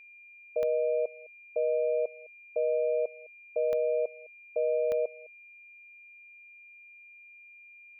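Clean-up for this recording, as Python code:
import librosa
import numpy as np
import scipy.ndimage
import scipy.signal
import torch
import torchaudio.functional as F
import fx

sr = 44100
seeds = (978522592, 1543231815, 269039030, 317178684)

y = fx.fix_declick_ar(x, sr, threshold=10.0)
y = fx.notch(y, sr, hz=2400.0, q=30.0)
y = fx.fix_echo_inverse(y, sr, delay_ms=209, level_db=-22.5)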